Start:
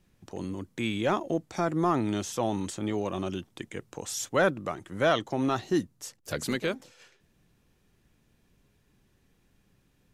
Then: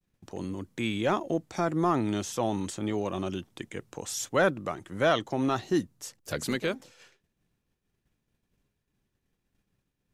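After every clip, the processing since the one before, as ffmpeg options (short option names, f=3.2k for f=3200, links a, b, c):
-af "agate=range=-33dB:threshold=-57dB:ratio=3:detection=peak"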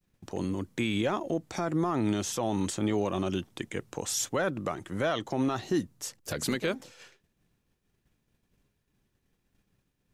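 -af "alimiter=limit=-22.5dB:level=0:latency=1:release=107,volume=3.5dB"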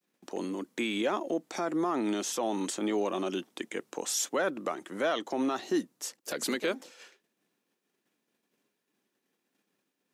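-af "highpass=f=240:w=0.5412,highpass=f=240:w=1.3066"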